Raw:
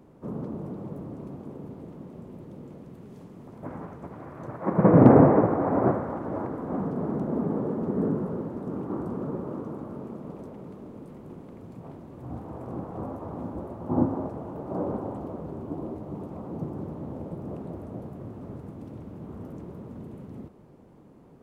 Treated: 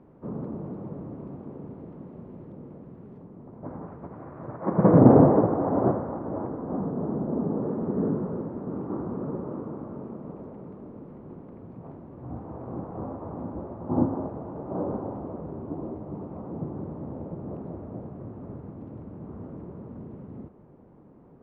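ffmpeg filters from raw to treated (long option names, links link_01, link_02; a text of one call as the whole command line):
ffmpeg -i in.wav -af "asetnsamples=nb_out_samples=441:pad=0,asendcmd='2.52 lowpass f 1500;3.18 lowpass f 1100;3.87 lowpass f 1500;4.99 lowpass f 1100;7.62 lowpass f 1600',lowpass=1900" out.wav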